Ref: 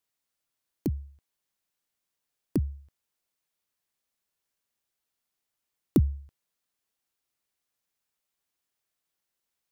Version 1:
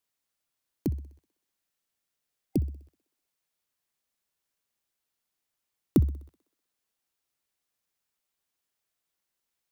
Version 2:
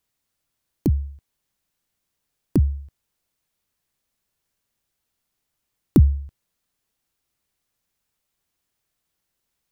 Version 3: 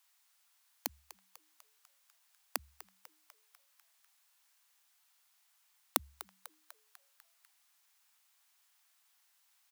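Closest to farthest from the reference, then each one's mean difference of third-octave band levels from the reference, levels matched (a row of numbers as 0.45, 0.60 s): 2, 1, 3; 1.5, 3.5, 17.0 dB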